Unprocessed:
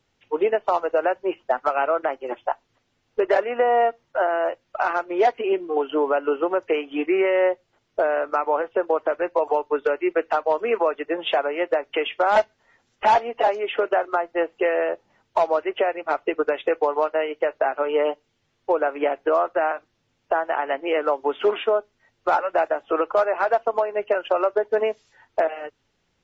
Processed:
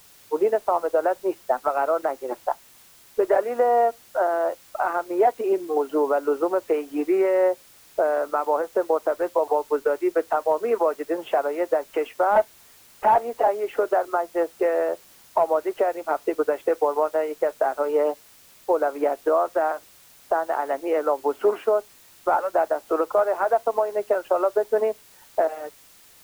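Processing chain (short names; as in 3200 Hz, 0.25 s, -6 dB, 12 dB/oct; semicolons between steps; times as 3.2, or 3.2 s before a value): LPF 1300 Hz 12 dB/oct; added noise white -52 dBFS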